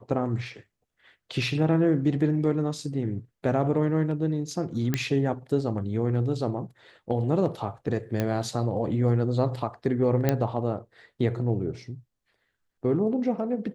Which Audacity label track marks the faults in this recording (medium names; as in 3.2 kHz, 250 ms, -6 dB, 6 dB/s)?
4.940000	4.940000	pop -11 dBFS
8.200000	8.200000	pop -13 dBFS
10.290000	10.290000	pop -9 dBFS